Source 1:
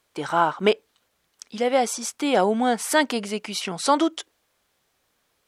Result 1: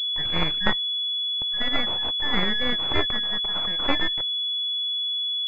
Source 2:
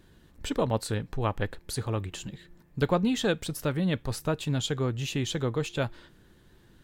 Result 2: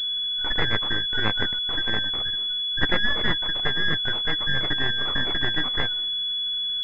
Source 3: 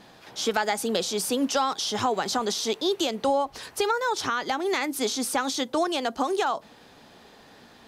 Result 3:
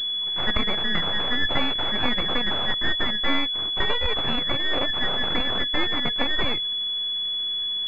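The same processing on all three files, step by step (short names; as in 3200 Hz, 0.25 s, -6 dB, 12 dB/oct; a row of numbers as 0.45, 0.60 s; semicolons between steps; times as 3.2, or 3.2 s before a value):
four-band scrambler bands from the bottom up 2143; half-wave rectifier; pulse-width modulation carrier 3400 Hz; match loudness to -23 LUFS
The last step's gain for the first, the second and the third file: +2.5, +9.5, +8.0 dB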